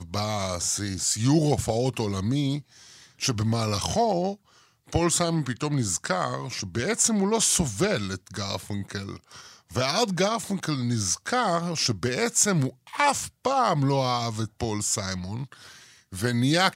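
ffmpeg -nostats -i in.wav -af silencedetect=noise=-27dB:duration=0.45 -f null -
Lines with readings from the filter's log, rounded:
silence_start: 2.58
silence_end: 3.22 | silence_duration: 0.64
silence_start: 4.32
silence_end: 4.93 | silence_duration: 0.61
silence_start: 9.13
silence_end: 9.75 | silence_duration: 0.62
silence_start: 15.43
silence_end: 16.15 | silence_duration: 0.72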